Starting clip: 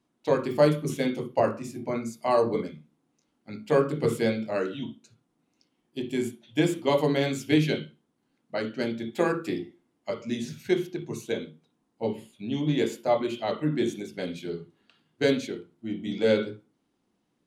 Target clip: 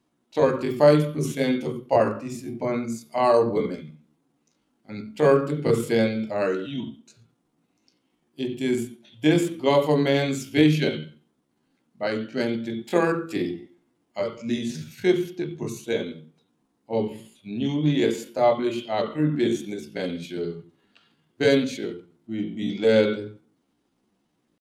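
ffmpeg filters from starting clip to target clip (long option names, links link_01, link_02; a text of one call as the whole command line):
ffmpeg -i in.wav -af "atempo=0.71,volume=3.5dB" out.wav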